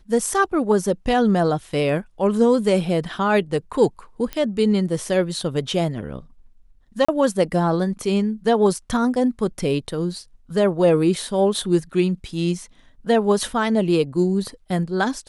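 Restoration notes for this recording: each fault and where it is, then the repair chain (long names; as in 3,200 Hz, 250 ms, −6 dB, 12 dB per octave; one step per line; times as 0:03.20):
0:04.33: click −13 dBFS
0:07.05–0:07.08: drop-out 35 ms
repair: click removal
repair the gap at 0:07.05, 35 ms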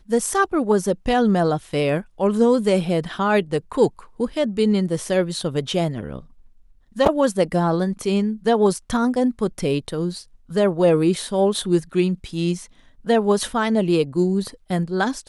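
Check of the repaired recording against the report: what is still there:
0:04.33: click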